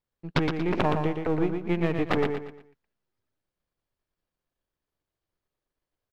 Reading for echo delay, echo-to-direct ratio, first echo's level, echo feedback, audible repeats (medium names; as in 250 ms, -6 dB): 117 ms, -5.0 dB, -5.5 dB, 34%, 4